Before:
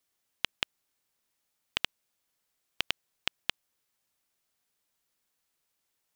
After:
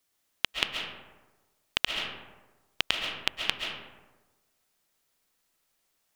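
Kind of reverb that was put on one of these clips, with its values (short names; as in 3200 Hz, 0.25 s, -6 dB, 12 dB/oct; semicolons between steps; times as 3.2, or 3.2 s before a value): digital reverb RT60 1.2 s, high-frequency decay 0.45×, pre-delay 95 ms, DRR 1.5 dB; gain +3.5 dB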